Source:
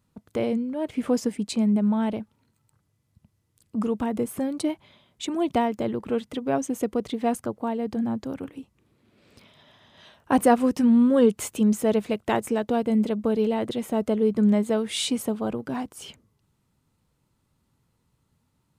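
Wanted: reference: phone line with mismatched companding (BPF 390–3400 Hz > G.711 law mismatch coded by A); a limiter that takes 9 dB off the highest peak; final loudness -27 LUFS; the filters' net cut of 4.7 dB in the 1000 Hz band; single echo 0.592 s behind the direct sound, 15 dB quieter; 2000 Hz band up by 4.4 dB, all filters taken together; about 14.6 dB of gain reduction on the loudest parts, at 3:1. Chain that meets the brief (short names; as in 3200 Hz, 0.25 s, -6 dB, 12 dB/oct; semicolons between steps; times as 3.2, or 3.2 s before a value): bell 1000 Hz -8.5 dB; bell 2000 Hz +8.5 dB; compressor 3:1, threshold -36 dBFS; limiter -31 dBFS; BPF 390–3400 Hz; echo 0.592 s -15 dB; G.711 law mismatch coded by A; gain +23 dB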